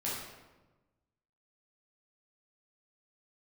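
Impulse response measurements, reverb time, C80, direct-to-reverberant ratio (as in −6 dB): 1.2 s, 3.5 dB, −8.0 dB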